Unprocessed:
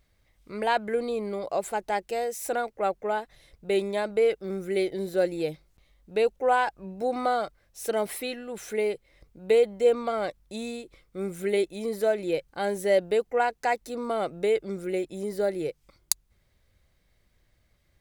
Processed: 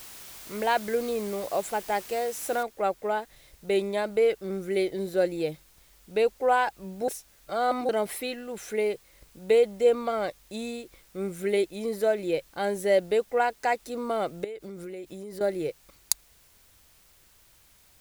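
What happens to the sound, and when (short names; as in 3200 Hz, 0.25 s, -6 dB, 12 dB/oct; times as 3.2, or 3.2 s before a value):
2.63 noise floor step -45 dB -60 dB
7.08–7.89 reverse
14.44–15.41 compressor 12:1, threshold -35 dBFS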